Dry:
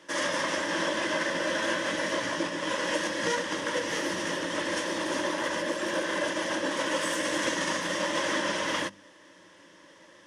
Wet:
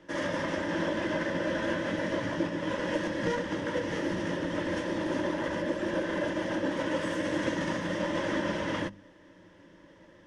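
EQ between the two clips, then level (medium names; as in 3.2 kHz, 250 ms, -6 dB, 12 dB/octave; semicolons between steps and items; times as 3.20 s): RIAA curve playback; band-stop 1.1 kHz, Q 11; -3.0 dB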